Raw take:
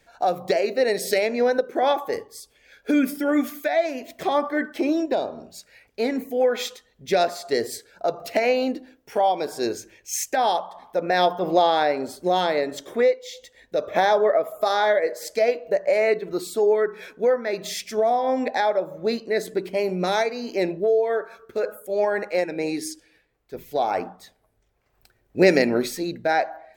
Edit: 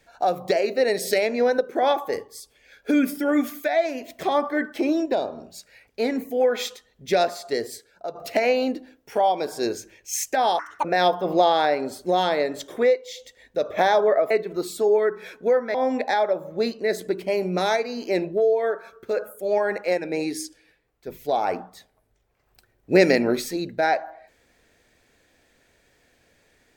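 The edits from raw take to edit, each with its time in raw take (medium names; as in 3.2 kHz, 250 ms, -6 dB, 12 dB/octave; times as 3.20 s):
7.17–8.15 s: fade out, to -9.5 dB
10.59–11.02 s: speed 169%
14.48–16.07 s: delete
17.51–18.21 s: delete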